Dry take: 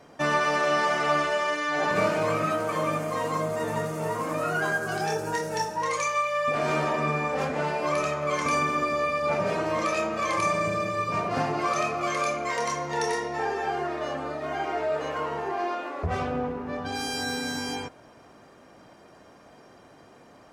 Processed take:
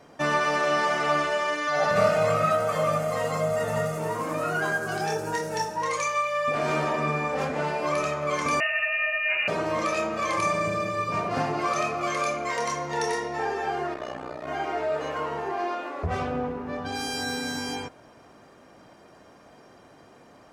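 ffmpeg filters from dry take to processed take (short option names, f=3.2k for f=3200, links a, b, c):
-filter_complex "[0:a]asettb=1/sr,asplit=3[a][b][c];[a]atrim=end=1.674[d];[b]atrim=start=1.67:end=3.98,asetpts=PTS-STARTPTS,afade=t=in:d=0.004:c=qsin,afade=t=out:st=2.306:d=0.004:c=qsin,aecho=1:1:1.5:0.77,atrim=end_sample=101871[e];[c]atrim=start=3.976[f];[d][e]acrossfade=d=0.004:c1=hsin:c2=qsin[g];[g][f]acrossfade=d=0.004:c1=qsin:c2=hsin,asettb=1/sr,asplit=3[h][i][j];[h]atrim=end=8.604[k];[i]atrim=start=8.6:end=9.48,asetpts=PTS-STARTPTS,afade=t=in:d=0.004:c=qsin,afade=t=out:st=0.876:d=0.004:c=qsin,lowpass=f=2.6k:t=q:w=0.5098,lowpass=f=2.6k:t=q:w=0.6013,lowpass=f=2.6k:t=q:w=0.9,lowpass=f=2.6k:t=q:w=2.563,afreqshift=-3000[l];[j]atrim=start=9.476[m];[k][l]acrossfade=d=0.004:c1=hsin:c2=qsin[n];[n][m]acrossfade=d=0.004:c1=qsin:c2=hsin,asettb=1/sr,asplit=3[o][p][q];[o]atrim=end=13.944[r];[p]atrim=start=13.94:end=14.48,asetpts=PTS-STARTPTS,afade=t=in:d=0.004:c=qsin,afade=t=out:st=0.536:d=0.004:c=qsin,tremolo=f=62:d=0.919[s];[q]atrim=start=14.476[t];[r][s]acrossfade=d=0.004:c1=hsin:c2=qsin[u];[u][t]acrossfade=d=0.004:c1=qsin:c2=hsin"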